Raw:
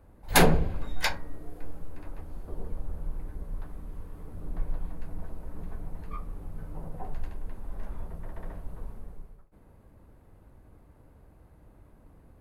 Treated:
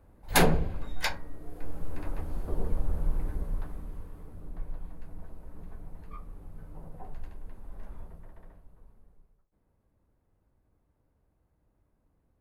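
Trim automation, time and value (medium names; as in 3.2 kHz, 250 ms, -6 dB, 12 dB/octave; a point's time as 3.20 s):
1.37 s -2.5 dB
1.94 s +6 dB
3.29 s +6 dB
4.53 s -6 dB
8.01 s -6 dB
8.72 s -16.5 dB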